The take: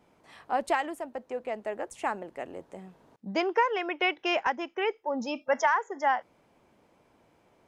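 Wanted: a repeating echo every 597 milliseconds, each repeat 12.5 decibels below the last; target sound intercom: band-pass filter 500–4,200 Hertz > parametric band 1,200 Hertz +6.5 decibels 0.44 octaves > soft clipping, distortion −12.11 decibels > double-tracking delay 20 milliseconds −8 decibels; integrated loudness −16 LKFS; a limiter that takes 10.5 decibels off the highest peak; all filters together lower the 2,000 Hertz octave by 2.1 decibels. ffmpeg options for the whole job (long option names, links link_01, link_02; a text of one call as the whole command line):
ffmpeg -i in.wav -filter_complex "[0:a]equalizer=frequency=2000:width_type=o:gain=-3.5,alimiter=level_in=1.5dB:limit=-24dB:level=0:latency=1,volume=-1.5dB,highpass=500,lowpass=4200,equalizer=frequency=1200:width_type=o:width=0.44:gain=6.5,aecho=1:1:597|1194|1791:0.237|0.0569|0.0137,asoftclip=threshold=-32dB,asplit=2[link_01][link_02];[link_02]adelay=20,volume=-8dB[link_03];[link_01][link_03]amix=inputs=2:normalize=0,volume=23.5dB" out.wav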